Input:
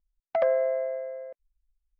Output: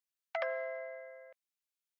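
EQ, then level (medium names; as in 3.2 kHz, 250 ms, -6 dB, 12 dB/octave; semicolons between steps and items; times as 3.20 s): high-pass 1.5 kHz 12 dB/octave; +2.5 dB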